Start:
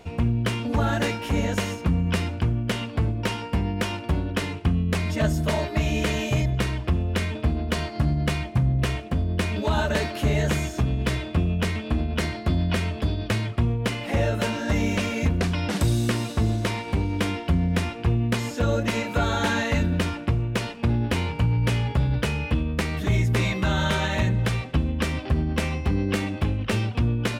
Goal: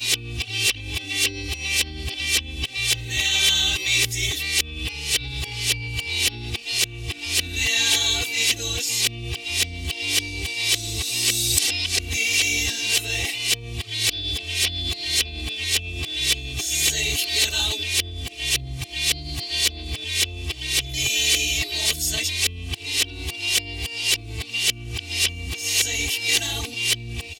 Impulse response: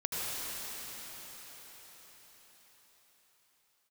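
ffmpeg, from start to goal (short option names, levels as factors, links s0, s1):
-af "areverse,aecho=1:1:2.6:0.94,aexciter=amount=15.5:drive=4:freq=2200,volume=0.251"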